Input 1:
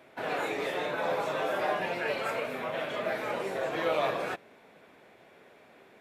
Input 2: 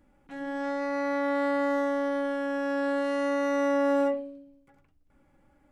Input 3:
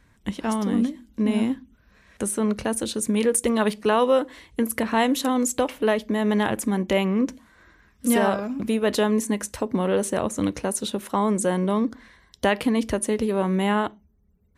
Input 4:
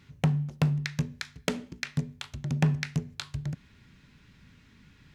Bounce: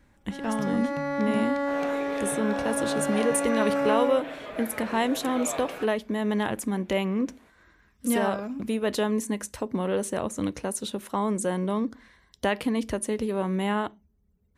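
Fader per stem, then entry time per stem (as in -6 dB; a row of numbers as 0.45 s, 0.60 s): -5.5 dB, -1.0 dB, -4.5 dB, -16.0 dB; 1.50 s, 0.00 s, 0.00 s, 0.35 s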